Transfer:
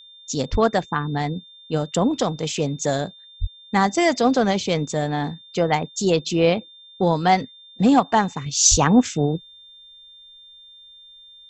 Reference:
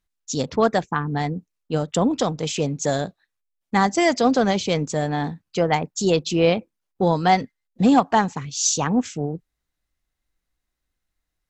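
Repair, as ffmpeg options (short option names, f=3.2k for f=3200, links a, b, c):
-filter_complex "[0:a]bandreject=f=3.6k:w=30,asplit=3[a][b][c];[a]afade=t=out:st=0.51:d=0.02[d];[b]highpass=f=140:w=0.5412,highpass=f=140:w=1.3066,afade=t=in:st=0.51:d=0.02,afade=t=out:st=0.63:d=0.02[e];[c]afade=t=in:st=0.63:d=0.02[f];[d][e][f]amix=inputs=3:normalize=0,asplit=3[g][h][i];[g]afade=t=out:st=3.4:d=0.02[j];[h]highpass=f=140:w=0.5412,highpass=f=140:w=1.3066,afade=t=in:st=3.4:d=0.02,afade=t=out:st=3.52:d=0.02[k];[i]afade=t=in:st=3.52:d=0.02[l];[j][k][l]amix=inputs=3:normalize=0,asplit=3[m][n][o];[m]afade=t=out:st=8.7:d=0.02[p];[n]highpass=f=140:w=0.5412,highpass=f=140:w=1.3066,afade=t=in:st=8.7:d=0.02,afade=t=out:st=8.82:d=0.02[q];[o]afade=t=in:st=8.82:d=0.02[r];[p][q][r]amix=inputs=3:normalize=0,asetnsamples=n=441:p=0,asendcmd='8.46 volume volume -5.5dB',volume=0dB"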